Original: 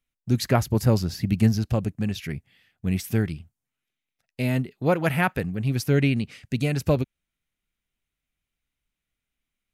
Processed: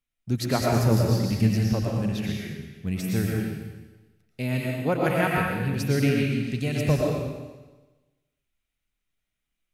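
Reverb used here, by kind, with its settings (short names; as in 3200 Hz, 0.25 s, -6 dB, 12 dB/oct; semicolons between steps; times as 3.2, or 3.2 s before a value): digital reverb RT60 1.2 s, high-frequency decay 1×, pre-delay 75 ms, DRR -2.5 dB; gain -4 dB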